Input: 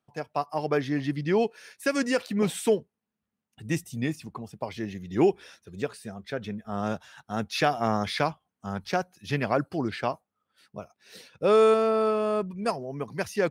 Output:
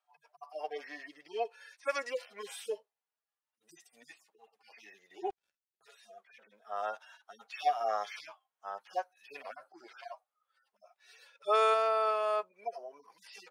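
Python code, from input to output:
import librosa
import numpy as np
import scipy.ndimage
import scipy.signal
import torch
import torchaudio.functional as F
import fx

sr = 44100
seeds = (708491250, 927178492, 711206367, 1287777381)

y = fx.hpss_only(x, sr, part='harmonic')
y = scipy.signal.sosfilt(scipy.signal.butter(4, 630.0, 'highpass', fs=sr, output='sos'), y)
y = fx.high_shelf(y, sr, hz=7300.0, db=-5.5)
y = fx.power_curve(y, sr, exponent=3.0, at=(5.3, 5.81))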